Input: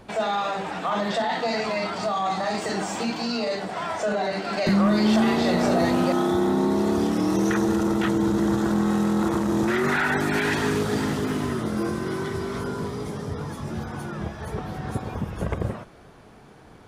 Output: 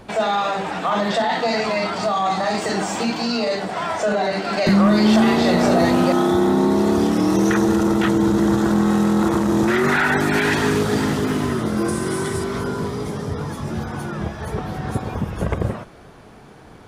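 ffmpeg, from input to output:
-filter_complex "[0:a]asettb=1/sr,asplit=3[s0][s1][s2];[s0]atrim=end=11.884[s3];[s1]atrim=start=11.88:end=12.44,asetpts=PTS-STARTPTS,afade=t=in:d=0.004:c=qsin,afade=t=out:st=0.556:d=0.004:c=qsin,equalizer=f=8900:w=1.5:g=14.5[s4];[s2]atrim=start=12.436[s5];[s3][s4]acrossfade=d=0.004:c1=hsin:c2=qsin[s6];[s6][s5]acrossfade=d=0.004:c1=qsin:c2=hsin,volume=1.78"

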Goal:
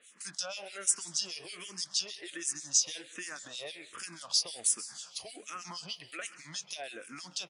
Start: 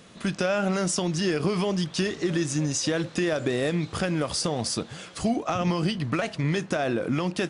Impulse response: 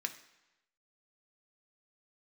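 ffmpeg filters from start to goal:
-filter_complex "[0:a]aderivative,acontrast=74,acrossover=split=2300[s0][s1];[s0]aeval=exprs='val(0)*(1-1/2+1/2*cos(2*PI*6.3*n/s))':c=same[s2];[s1]aeval=exprs='val(0)*(1-1/2-1/2*cos(2*PI*6.3*n/s))':c=same[s3];[s2][s3]amix=inputs=2:normalize=0,aecho=1:1:183|366|549|732:0.0841|0.0446|0.0236|0.0125,asplit=2[s4][s5];[1:a]atrim=start_sample=2205,adelay=131[s6];[s5][s6]afir=irnorm=-1:irlink=0,volume=0.141[s7];[s4][s7]amix=inputs=2:normalize=0,asplit=2[s8][s9];[s9]afreqshift=-1.3[s10];[s8][s10]amix=inputs=2:normalize=1,volume=1.19"

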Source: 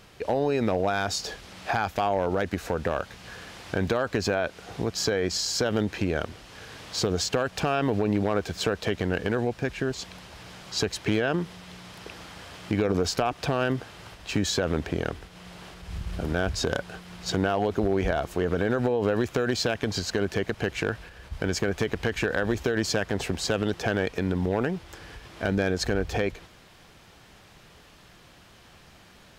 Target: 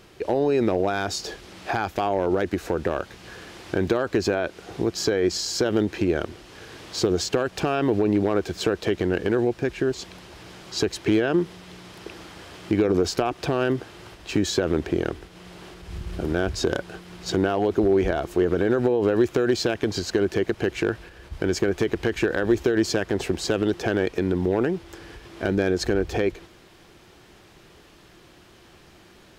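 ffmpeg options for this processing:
-af "equalizer=f=350:t=o:w=0.49:g=10"

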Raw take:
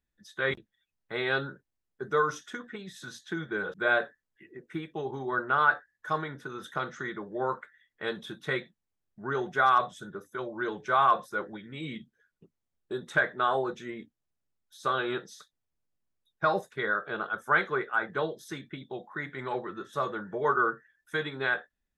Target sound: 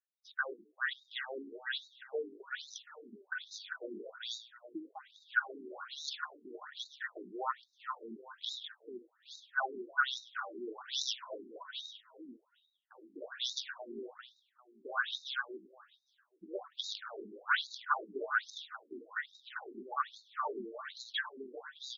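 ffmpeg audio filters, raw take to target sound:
-filter_complex "[0:a]asoftclip=type=hard:threshold=0.158,asuperstop=centerf=2300:order=4:qfactor=2.1,asplit=2[s0][s1];[s1]aecho=0:1:396|792|1188:0.668|0.154|0.0354[s2];[s0][s2]amix=inputs=2:normalize=0,crystalizer=i=5:c=0,adynamicsmooth=sensitivity=6:basefreq=1300,highshelf=f=3800:g=-10.5,aeval=exprs='0.158*(abs(mod(val(0)/0.158+3,4)-2)-1)':c=same,equalizer=f=450:t=o:w=2.7:g=-14.5,asplit=2[s3][s4];[s4]asplit=3[s5][s6][s7];[s5]adelay=101,afreqshift=-49,volume=0.133[s8];[s6]adelay=202,afreqshift=-98,volume=0.0412[s9];[s7]adelay=303,afreqshift=-147,volume=0.0129[s10];[s8][s9][s10]amix=inputs=3:normalize=0[s11];[s3][s11]amix=inputs=2:normalize=0,afftfilt=real='re*between(b*sr/1024,290*pow(5200/290,0.5+0.5*sin(2*PI*1.2*pts/sr))/1.41,290*pow(5200/290,0.5+0.5*sin(2*PI*1.2*pts/sr))*1.41)':imag='im*between(b*sr/1024,290*pow(5200/290,0.5+0.5*sin(2*PI*1.2*pts/sr))/1.41,290*pow(5200/290,0.5+0.5*sin(2*PI*1.2*pts/sr))*1.41)':win_size=1024:overlap=0.75,volume=1.88"

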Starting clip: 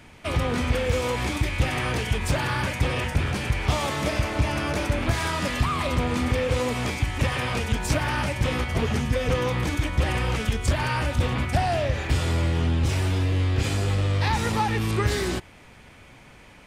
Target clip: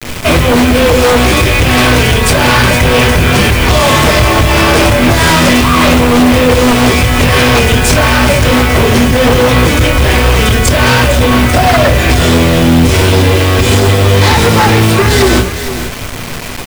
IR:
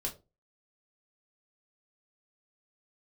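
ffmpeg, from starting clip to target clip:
-filter_complex "[0:a]bandreject=f=910:w=23[s0];[1:a]atrim=start_sample=2205[s1];[s0][s1]afir=irnorm=-1:irlink=0,alimiter=limit=0.188:level=0:latency=1:release=163,acrossover=split=250|3000[s2][s3][s4];[s2]acompressor=threshold=0.0355:ratio=3[s5];[s5][s3][s4]amix=inputs=3:normalize=0,aeval=exprs='0.237*sin(PI/2*3.16*val(0)/0.237)':c=same,aecho=1:1:459:0.266,acrusher=bits=4:mix=0:aa=0.000001,volume=2.66"

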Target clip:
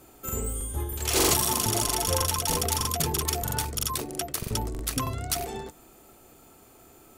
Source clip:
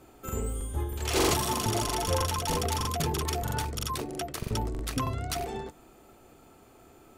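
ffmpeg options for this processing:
-af "highshelf=f=6000:g=12"

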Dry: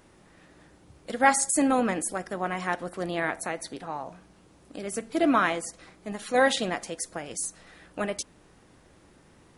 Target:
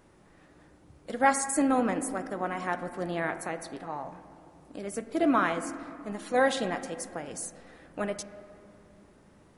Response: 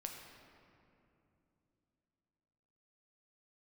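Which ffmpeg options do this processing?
-filter_complex "[0:a]asplit=2[s0][s1];[1:a]atrim=start_sample=2205,lowpass=2200[s2];[s1][s2]afir=irnorm=-1:irlink=0,volume=0.891[s3];[s0][s3]amix=inputs=2:normalize=0,volume=0.531"

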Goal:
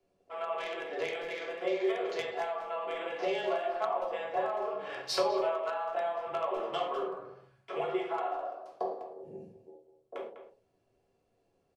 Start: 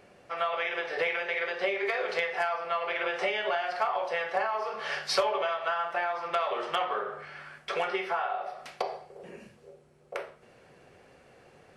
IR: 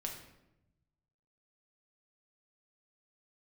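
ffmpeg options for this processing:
-filter_complex "[0:a]afreqshift=-18,afwtdn=0.01,asplit=2[s0][s1];[s1]adelay=200,highpass=300,lowpass=3400,asoftclip=type=hard:threshold=0.0794,volume=0.316[s2];[s0][s2]amix=inputs=2:normalize=0[s3];[1:a]atrim=start_sample=2205,afade=t=out:st=0.28:d=0.01,atrim=end_sample=12789,asetrate=79380,aresample=44100[s4];[s3][s4]afir=irnorm=-1:irlink=0,acrossover=split=120|1200|2600[s5][s6][s7][s8];[s7]acrusher=bits=4:mix=0:aa=0.5[s9];[s5][s6][s9][s8]amix=inputs=4:normalize=0,volume=1.58"

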